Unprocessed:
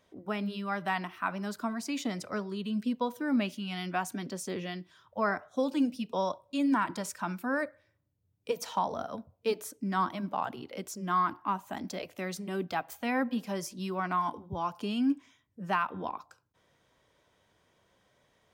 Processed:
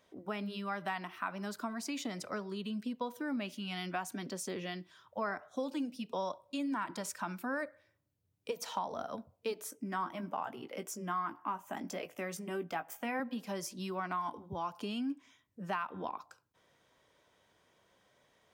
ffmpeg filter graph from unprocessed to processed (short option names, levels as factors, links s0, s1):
-filter_complex "[0:a]asettb=1/sr,asplit=3[s0][s1][s2];[s0]atrim=end=9.704[s3];[s1]atrim=start=9.7:end=13.2,asetpts=PTS-STARTPTS,afade=t=in:d=0.004:c=qsin,afade=t=out:st=3.496:d=0.004:c=qsin,highpass=110,equalizer=f=4100:w=3.4:g=-12.5,asplit=2[s4][s5];[s5]adelay=18,volume=0.316[s6];[s4][s6]amix=inputs=2:normalize=0,atrim=end_sample=154350[s7];[s2]atrim=start=13.196[s8];[s3][s7]acrossfade=d=0.004:c1=hsin:c2=qsin[s9];[s9][s8]acrossfade=d=0.004:c1=qsin:c2=hsin,acompressor=threshold=0.0178:ratio=2.5,lowshelf=f=160:g=-7"